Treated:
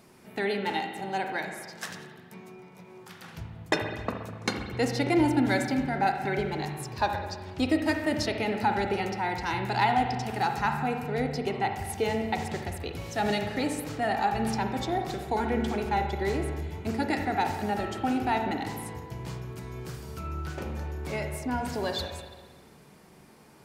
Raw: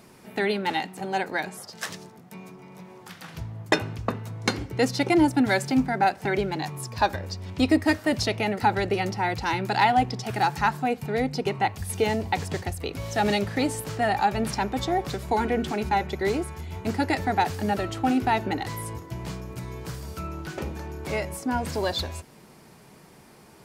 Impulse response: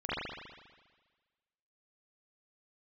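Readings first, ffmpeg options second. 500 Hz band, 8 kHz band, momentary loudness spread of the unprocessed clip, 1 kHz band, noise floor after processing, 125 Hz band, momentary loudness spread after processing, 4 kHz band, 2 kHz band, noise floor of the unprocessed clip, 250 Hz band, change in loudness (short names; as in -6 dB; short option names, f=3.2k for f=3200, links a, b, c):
-3.0 dB, -4.5 dB, 14 LU, -3.5 dB, -53 dBFS, -3.0 dB, 13 LU, -4.0 dB, -3.5 dB, -51 dBFS, -3.5 dB, -3.5 dB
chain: -filter_complex "[0:a]asplit=2[a][b];[1:a]atrim=start_sample=2205[c];[b][c]afir=irnorm=-1:irlink=0,volume=-11dB[d];[a][d]amix=inputs=2:normalize=0,volume=-6dB"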